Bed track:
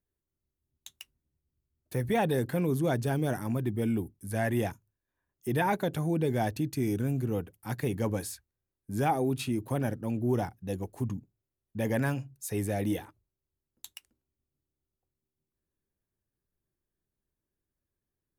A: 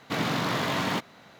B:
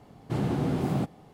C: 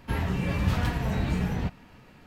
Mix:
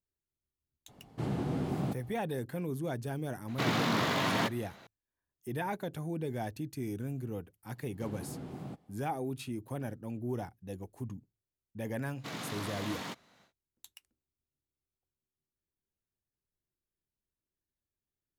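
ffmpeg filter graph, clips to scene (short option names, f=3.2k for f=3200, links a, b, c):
-filter_complex "[2:a]asplit=2[a][b];[1:a]asplit=2[c][d];[0:a]volume=-8dB[e];[d]equalizer=f=8.4k:w=0.56:g=6.5[f];[a]atrim=end=1.33,asetpts=PTS-STARTPTS,volume=-6dB,afade=t=in:d=0.004:c=hsin,afade=t=out:st=1.326:d=0.004:c=hsin,adelay=880[g];[c]atrim=end=1.39,asetpts=PTS-STARTPTS,volume=-2.5dB,afade=t=in:d=0.004:c=hsin,afade=t=out:st=1.386:d=0.004:c=hsin,adelay=3480[h];[b]atrim=end=1.33,asetpts=PTS-STARTPTS,volume=-15.5dB,afade=t=in:d=0.004:c=hsin,afade=t=out:st=1.326:d=0.004:c=hsin,adelay=339570S[i];[f]atrim=end=1.39,asetpts=PTS-STARTPTS,volume=-13.5dB,afade=t=in:d=0.1,afade=t=out:st=1.29:d=0.1,adelay=12140[j];[e][g][h][i][j]amix=inputs=5:normalize=0"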